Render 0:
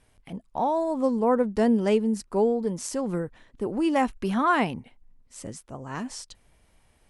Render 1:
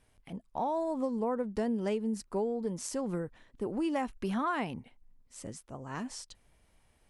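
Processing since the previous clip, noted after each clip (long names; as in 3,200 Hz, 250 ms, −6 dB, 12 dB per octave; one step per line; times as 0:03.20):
downward compressor, threshold −23 dBFS, peak gain reduction 6.5 dB
level −5 dB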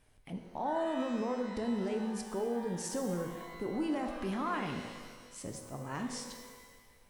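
brickwall limiter −28.5 dBFS, peak gain reduction 8 dB
reverb with rising layers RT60 1.6 s, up +12 semitones, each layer −8 dB, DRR 4.5 dB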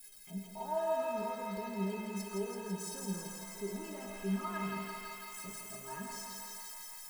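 spike at every zero crossing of −40 dBFS
stiff-string resonator 190 Hz, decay 0.3 s, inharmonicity 0.03
feedback echo with a high-pass in the loop 166 ms, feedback 81%, high-pass 460 Hz, level −3.5 dB
level +7 dB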